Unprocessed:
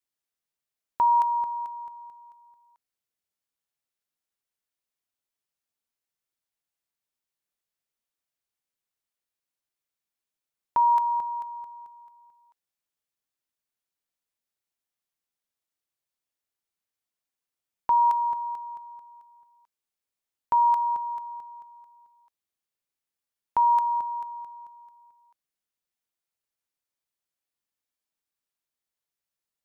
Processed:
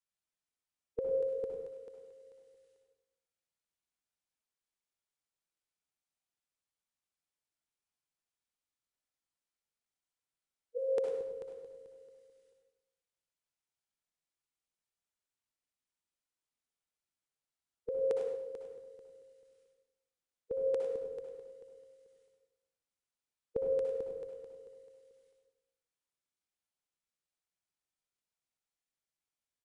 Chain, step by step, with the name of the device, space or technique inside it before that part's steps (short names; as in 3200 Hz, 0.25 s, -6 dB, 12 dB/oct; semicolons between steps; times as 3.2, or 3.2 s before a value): monster voice (pitch shift -10 st; formant shift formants -2.5 st; low shelf 180 Hz +4 dB; echo 0.101 s -9.5 dB; reverb RT60 0.90 s, pre-delay 55 ms, DRR 1.5 dB); 1.67–2.25 low shelf 170 Hz -7 dB; gain -9 dB